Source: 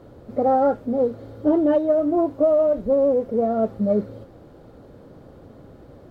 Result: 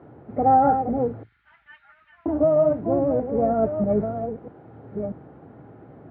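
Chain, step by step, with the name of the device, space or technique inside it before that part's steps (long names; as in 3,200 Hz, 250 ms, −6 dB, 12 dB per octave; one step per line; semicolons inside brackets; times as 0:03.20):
delay that plays each chunk backwards 640 ms, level −7.5 dB
0:01.23–0:02.26: inverse Chebyshev band-stop filter 180–480 Hz, stop band 80 dB
dynamic equaliser 110 Hz, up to +8 dB, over −55 dBFS, Q 5.7
sub-octave bass pedal (sub-octave generator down 2 octaves, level −5 dB; loudspeaker in its box 86–2,300 Hz, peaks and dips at 97 Hz −8 dB, 220 Hz −3 dB, 540 Hz −8 dB, 790 Hz +5 dB, 1,100 Hz −3 dB)
level +1 dB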